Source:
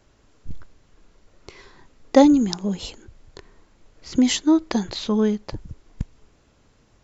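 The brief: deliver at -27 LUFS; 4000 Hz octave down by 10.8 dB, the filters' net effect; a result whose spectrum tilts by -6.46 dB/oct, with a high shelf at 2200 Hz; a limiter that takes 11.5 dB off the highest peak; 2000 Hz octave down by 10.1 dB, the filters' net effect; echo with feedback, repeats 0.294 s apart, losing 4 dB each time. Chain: bell 2000 Hz -8 dB; high shelf 2200 Hz -4.5 dB; bell 4000 Hz -7 dB; limiter -14 dBFS; feedback echo 0.294 s, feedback 63%, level -4 dB; gain -2.5 dB

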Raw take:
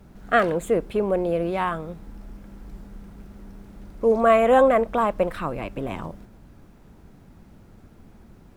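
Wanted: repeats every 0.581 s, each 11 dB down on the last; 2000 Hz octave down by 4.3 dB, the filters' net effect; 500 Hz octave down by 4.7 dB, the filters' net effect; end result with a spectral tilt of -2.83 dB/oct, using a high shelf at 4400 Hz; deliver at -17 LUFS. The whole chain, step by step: bell 500 Hz -5.5 dB; bell 2000 Hz -6 dB; high shelf 4400 Hz +4 dB; feedback echo 0.581 s, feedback 28%, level -11 dB; gain +8.5 dB

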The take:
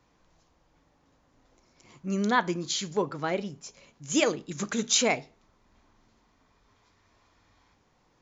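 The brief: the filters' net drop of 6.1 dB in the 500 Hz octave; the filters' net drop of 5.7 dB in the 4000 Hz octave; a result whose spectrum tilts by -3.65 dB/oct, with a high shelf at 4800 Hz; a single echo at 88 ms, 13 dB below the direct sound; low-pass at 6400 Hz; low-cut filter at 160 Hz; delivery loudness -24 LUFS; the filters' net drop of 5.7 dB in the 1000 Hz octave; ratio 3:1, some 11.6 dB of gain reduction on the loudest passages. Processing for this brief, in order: HPF 160 Hz; LPF 6400 Hz; bell 500 Hz -6.5 dB; bell 1000 Hz -4.5 dB; bell 4000 Hz -4.5 dB; high shelf 4800 Hz -3.5 dB; compressor 3:1, threshold -39 dBFS; echo 88 ms -13 dB; gain +17 dB

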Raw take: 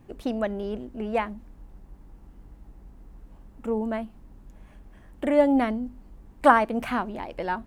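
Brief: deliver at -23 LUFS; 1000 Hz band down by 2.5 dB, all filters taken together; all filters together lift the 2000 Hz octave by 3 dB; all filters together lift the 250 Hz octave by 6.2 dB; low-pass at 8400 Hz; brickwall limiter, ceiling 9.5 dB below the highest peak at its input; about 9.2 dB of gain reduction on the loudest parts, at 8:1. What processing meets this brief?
LPF 8400 Hz; bell 250 Hz +7 dB; bell 1000 Hz -5 dB; bell 2000 Hz +6 dB; compressor 8:1, threshold -21 dBFS; gain +7.5 dB; limiter -13.5 dBFS

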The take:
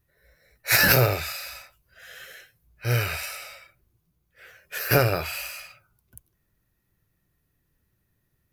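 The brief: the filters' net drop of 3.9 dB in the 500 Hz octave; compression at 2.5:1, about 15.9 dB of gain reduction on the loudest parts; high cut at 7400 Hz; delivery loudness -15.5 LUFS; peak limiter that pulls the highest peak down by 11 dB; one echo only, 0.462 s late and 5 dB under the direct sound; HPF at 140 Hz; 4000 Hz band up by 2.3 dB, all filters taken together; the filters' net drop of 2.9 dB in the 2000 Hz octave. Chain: HPF 140 Hz; LPF 7400 Hz; bell 500 Hz -4.5 dB; bell 2000 Hz -4.5 dB; bell 4000 Hz +4.5 dB; compressor 2.5:1, threshold -42 dBFS; limiter -33 dBFS; echo 0.462 s -5 dB; gain +28 dB

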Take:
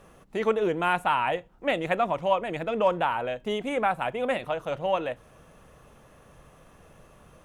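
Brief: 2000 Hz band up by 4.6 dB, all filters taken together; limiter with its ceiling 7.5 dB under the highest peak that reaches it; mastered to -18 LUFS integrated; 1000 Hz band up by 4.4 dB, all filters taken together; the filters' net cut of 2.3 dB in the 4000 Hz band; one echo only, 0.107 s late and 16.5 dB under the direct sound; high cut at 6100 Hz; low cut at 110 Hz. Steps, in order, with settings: HPF 110 Hz; LPF 6100 Hz; bell 1000 Hz +4.5 dB; bell 2000 Hz +6.5 dB; bell 4000 Hz -8 dB; limiter -14 dBFS; echo 0.107 s -16.5 dB; gain +8.5 dB

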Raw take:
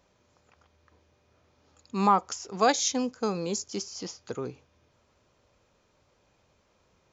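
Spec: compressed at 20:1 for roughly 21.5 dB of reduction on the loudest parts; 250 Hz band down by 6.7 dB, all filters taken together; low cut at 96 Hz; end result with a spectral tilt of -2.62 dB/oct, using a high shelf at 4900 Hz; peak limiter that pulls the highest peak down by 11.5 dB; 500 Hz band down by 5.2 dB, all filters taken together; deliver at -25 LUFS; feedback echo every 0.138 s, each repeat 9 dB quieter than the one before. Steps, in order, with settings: HPF 96 Hz; bell 250 Hz -7.5 dB; bell 500 Hz -4.5 dB; high shelf 4900 Hz +8 dB; compressor 20:1, threshold -40 dBFS; limiter -37 dBFS; feedback echo 0.138 s, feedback 35%, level -9 dB; gain +22 dB

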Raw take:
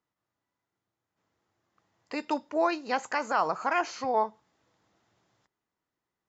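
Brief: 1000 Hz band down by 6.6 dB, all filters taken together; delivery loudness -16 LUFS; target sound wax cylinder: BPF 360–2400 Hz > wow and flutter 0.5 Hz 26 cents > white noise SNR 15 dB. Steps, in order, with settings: BPF 360–2400 Hz; bell 1000 Hz -8.5 dB; wow and flutter 0.5 Hz 26 cents; white noise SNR 15 dB; gain +18.5 dB

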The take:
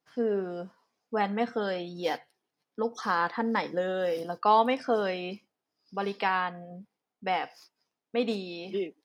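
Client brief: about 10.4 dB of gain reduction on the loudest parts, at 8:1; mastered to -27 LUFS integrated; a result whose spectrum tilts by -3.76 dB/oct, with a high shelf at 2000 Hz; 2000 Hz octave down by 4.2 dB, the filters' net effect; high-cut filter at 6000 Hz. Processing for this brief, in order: LPF 6000 Hz; high shelf 2000 Hz +3.5 dB; bell 2000 Hz -7.5 dB; compressor 8:1, threshold -28 dBFS; gain +8 dB

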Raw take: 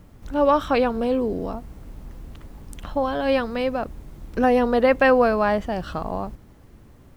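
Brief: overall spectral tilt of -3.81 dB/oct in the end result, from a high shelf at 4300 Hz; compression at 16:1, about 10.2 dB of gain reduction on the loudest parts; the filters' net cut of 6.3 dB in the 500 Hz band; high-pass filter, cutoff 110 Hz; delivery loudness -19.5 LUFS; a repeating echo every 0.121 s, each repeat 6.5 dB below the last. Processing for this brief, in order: HPF 110 Hz; bell 500 Hz -7 dB; high shelf 4300 Hz +6.5 dB; compressor 16:1, threshold -25 dBFS; feedback echo 0.121 s, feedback 47%, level -6.5 dB; gain +10.5 dB

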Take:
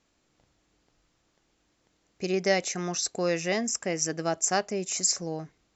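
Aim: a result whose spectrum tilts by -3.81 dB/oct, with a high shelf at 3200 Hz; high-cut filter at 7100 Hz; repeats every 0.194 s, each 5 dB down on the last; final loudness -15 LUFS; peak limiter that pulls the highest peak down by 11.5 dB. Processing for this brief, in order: LPF 7100 Hz; high shelf 3200 Hz -6.5 dB; limiter -24 dBFS; feedback echo 0.194 s, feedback 56%, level -5 dB; gain +18 dB

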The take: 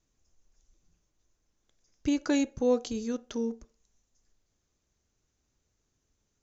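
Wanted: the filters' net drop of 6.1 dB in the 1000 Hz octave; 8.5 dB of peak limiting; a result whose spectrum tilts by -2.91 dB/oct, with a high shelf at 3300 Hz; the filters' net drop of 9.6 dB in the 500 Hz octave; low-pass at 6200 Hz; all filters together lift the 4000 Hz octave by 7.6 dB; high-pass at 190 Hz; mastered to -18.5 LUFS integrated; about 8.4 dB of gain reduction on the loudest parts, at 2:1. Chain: HPF 190 Hz; LPF 6200 Hz; bell 500 Hz -9 dB; bell 1000 Hz -5.5 dB; high shelf 3300 Hz +7 dB; bell 4000 Hz +5.5 dB; compressor 2:1, threshold -41 dBFS; gain +24 dB; limiter -6.5 dBFS

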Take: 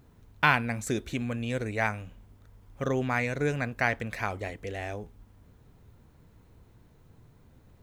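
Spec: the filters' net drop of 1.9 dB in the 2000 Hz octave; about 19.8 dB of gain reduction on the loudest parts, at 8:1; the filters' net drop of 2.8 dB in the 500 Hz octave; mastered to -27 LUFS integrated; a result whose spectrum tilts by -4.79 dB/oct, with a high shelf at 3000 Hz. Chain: bell 500 Hz -3.5 dB; bell 2000 Hz -4.5 dB; high shelf 3000 Hz +6 dB; compressor 8:1, threshold -39 dBFS; gain +16.5 dB

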